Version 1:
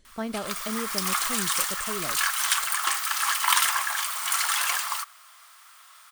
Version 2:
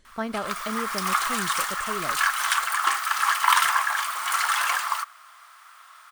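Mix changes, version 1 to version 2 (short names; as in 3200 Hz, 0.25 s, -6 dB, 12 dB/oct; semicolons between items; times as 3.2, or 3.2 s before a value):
background: add tilt -1.5 dB/oct; master: add bell 1300 Hz +6.5 dB 1.5 oct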